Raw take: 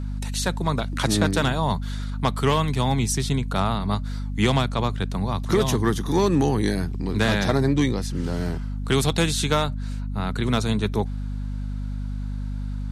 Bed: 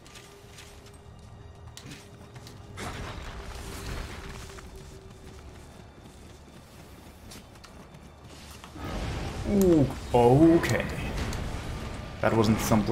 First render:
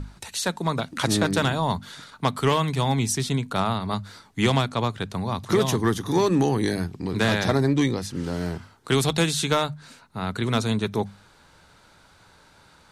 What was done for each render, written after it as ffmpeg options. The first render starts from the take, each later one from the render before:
-af "bandreject=f=50:t=h:w=6,bandreject=f=100:t=h:w=6,bandreject=f=150:t=h:w=6,bandreject=f=200:t=h:w=6,bandreject=f=250:t=h:w=6"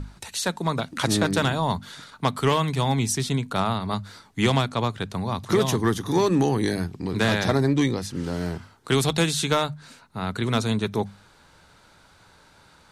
-af anull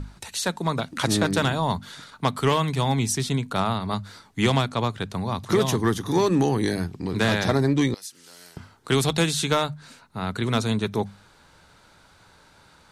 -filter_complex "[0:a]asettb=1/sr,asplit=3[a][b][c];[a]atrim=end=7.944[d];[b]atrim=start=7.94:end=8.57,asetpts=PTS-STARTPTS,afade=t=in:d=0.004:c=qsin,afade=t=out:st=0.626:d=0.004:c=qsin,aderivative[e];[c]atrim=start=8.566[f];[d][e]acrossfade=d=0.004:c1=hsin:c2=qsin[g];[g][f]acrossfade=d=0.004:c1=qsin:c2=hsin"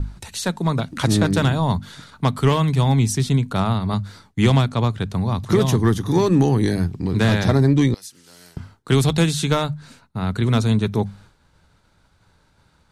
-af "agate=range=-33dB:threshold=-47dB:ratio=3:detection=peak,lowshelf=f=210:g=11.5"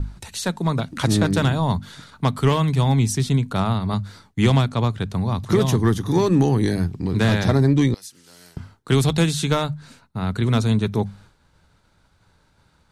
-af "volume=-1dB"

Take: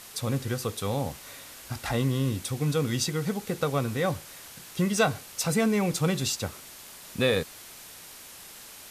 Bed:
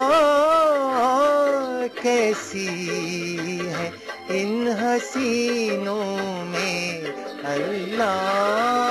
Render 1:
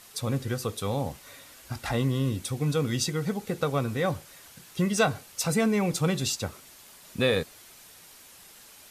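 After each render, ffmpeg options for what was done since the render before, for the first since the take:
-af "afftdn=nr=6:nf=-46"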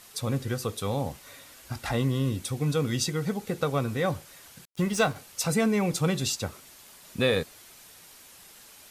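-filter_complex "[0:a]asettb=1/sr,asplit=3[a][b][c];[a]atrim=end=4.654[d];[b]atrim=start=4.65:end=5.16,asetpts=PTS-STARTPTS,afade=t=in:d=0.004:c=qsin,afade=t=out:st=0.506:d=0.004:c=qsin,aeval=exprs='sgn(val(0))*max(abs(val(0))-0.00944,0)':c=same[e];[c]atrim=start=5.156[f];[d][e]acrossfade=d=0.004:c1=hsin:c2=qsin[g];[g][f]acrossfade=d=0.004:c1=qsin:c2=hsin"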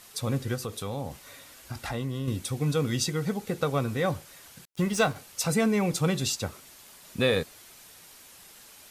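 -filter_complex "[0:a]asettb=1/sr,asplit=3[a][b][c];[a]atrim=end=0.554[d];[b]atrim=start=0.55:end=2.28,asetpts=PTS-STARTPTS,afade=t=in:d=0.004:c=qsin,afade=t=out:st=1.726:d=0.004:c=qsin,acompressor=threshold=-32dB:ratio=2:attack=3.2:release=140:knee=1:detection=peak[e];[c]atrim=start=2.276[f];[d][e]acrossfade=d=0.004:c1=hsin:c2=qsin[g];[g][f]acrossfade=d=0.004:c1=qsin:c2=hsin"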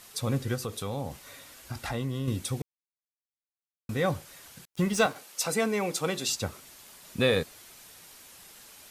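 -filter_complex "[0:a]asettb=1/sr,asplit=3[a][b][c];[a]atrim=end=5.064[d];[b]atrim=start=5.06:end=6.29,asetpts=PTS-STARTPTS,afade=t=in:d=0.004:c=qsin,afade=t=out:st=1.226:d=0.004:c=qsin,highpass=300[e];[c]atrim=start=6.286[f];[d][e]acrossfade=d=0.004:c1=hsin:c2=qsin[g];[g][f]acrossfade=d=0.004:c1=qsin:c2=hsin,asplit=3[h][i][j];[h]atrim=end=2.62,asetpts=PTS-STARTPTS,afade=t=out:st=2.616:d=0.004:c=hsin[k];[i]atrim=start=2.62:end=3.89,asetpts=PTS-STARTPTS,volume=0[l];[j]atrim=start=3.89,asetpts=PTS-STARTPTS,afade=t=in:d=0.004:c=hsin[m];[k][l][m]concat=n=3:v=0:a=1"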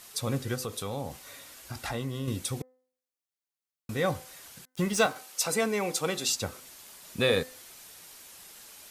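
-af "bass=f=250:g=-3,treble=f=4k:g=2,bandreject=f=255.3:t=h:w=4,bandreject=f=510.6:t=h:w=4,bandreject=f=765.9:t=h:w=4,bandreject=f=1.0212k:t=h:w=4,bandreject=f=1.2765k:t=h:w=4,bandreject=f=1.5318k:t=h:w=4,bandreject=f=1.7871k:t=h:w=4,bandreject=f=2.0424k:t=h:w=4"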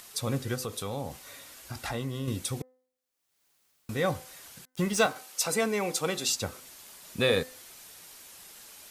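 -af "acompressor=mode=upward:threshold=-50dB:ratio=2.5"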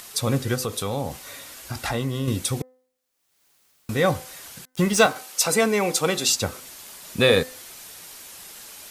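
-af "volume=7.5dB"

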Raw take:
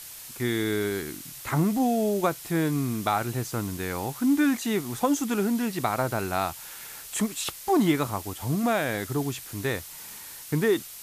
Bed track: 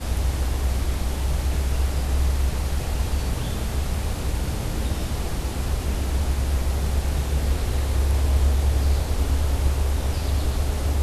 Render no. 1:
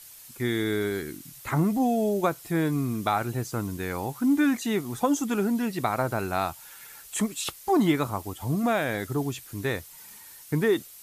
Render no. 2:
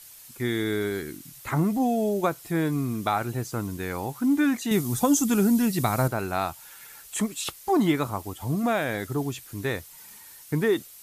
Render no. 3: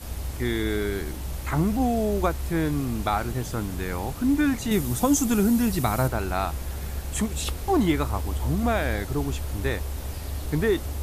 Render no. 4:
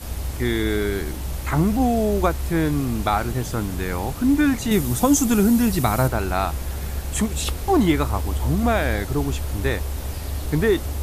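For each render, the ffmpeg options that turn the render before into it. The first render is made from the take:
-af "afftdn=nr=8:nf=-43"
-filter_complex "[0:a]asettb=1/sr,asplit=3[a][b][c];[a]atrim=end=4.714[d];[b]atrim=start=4.71:end=6.08,asetpts=PTS-STARTPTS,afade=t=in:d=0.004:c=qsin,afade=t=out:st=1.366:d=0.004:c=qsin,bass=f=250:g=9,treble=f=4k:g=10[e];[c]atrim=start=6.076[f];[d][e]acrossfade=d=0.004:c1=hsin:c2=qsin[g];[g][f]acrossfade=d=0.004:c1=qsin:c2=hsin"
-filter_complex "[1:a]volume=-9dB[a];[0:a][a]amix=inputs=2:normalize=0"
-af "volume=4dB"

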